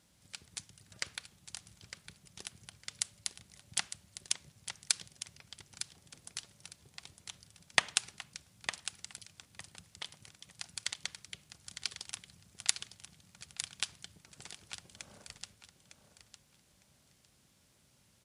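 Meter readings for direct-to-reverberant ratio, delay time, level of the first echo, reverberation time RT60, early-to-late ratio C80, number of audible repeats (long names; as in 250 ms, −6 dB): no reverb audible, 906 ms, −10.0 dB, no reverb audible, no reverb audible, 2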